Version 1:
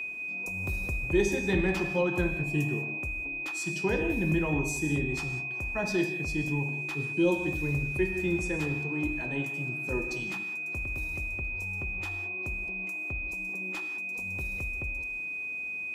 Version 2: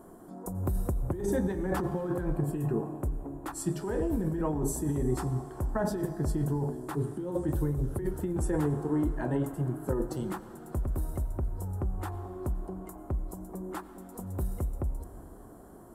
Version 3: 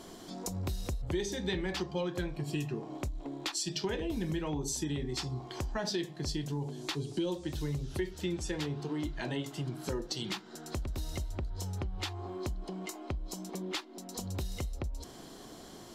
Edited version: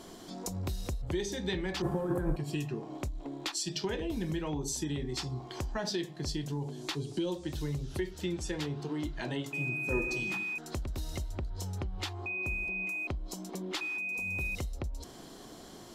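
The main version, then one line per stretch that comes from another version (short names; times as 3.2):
3
1.82–2.36 from 2
9.53–10.58 from 1
12.26–13.07 from 1
13.81–14.55 from 1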